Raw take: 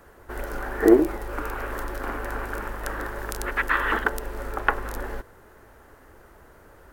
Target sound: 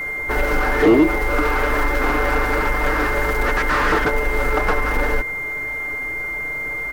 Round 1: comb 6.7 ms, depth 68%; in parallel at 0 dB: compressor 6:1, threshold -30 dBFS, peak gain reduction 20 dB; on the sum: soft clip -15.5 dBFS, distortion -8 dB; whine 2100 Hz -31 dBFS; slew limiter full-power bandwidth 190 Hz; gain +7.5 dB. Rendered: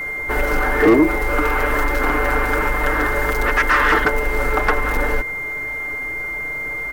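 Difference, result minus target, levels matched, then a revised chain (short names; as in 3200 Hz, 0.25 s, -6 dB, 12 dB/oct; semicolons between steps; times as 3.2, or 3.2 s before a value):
slew limiter: distortion -8 dB
comb 6.7 ms, depth 68%; in parallel at 0 dB: compressor 6:1, threshold -30 dBFS, peak gain reduction 20 dB; on the sum: soft clip -15.5 dBFS, distortion -8 dB; whine 2100 Hz -31 dBFS; slew limiter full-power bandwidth 85 Hz; gain +7.5 dB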